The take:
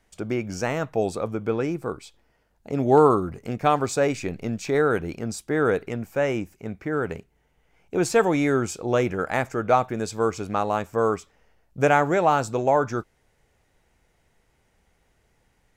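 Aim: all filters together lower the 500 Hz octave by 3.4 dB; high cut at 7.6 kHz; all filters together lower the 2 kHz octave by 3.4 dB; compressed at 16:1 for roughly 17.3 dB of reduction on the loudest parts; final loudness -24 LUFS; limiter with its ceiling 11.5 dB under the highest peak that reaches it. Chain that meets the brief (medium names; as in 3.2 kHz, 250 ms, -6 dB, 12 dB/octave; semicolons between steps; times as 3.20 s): low-pass 7.6 kHz; peaking EQ 500 Hz -4 dB; peaking EQ 2 kHz -4.5 dB; compression 16:1, threshold -31 dBFS; trim +18 dB; peak limiter -13.5 dBFS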